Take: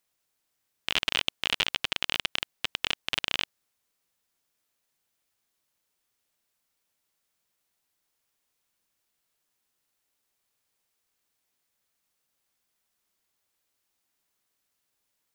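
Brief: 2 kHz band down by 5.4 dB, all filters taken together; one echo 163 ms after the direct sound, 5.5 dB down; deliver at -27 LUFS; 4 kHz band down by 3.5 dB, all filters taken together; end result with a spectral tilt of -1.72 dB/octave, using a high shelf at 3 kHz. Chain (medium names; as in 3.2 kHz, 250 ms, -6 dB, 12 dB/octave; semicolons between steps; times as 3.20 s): peaking EQ 2 kHz -8.5 dB; treble shelf 3 kHz +7.5 dB; peaking EQ 4 kHz -6.5 dB; delay 163 ms -5.5 dB; trim +4.5 dB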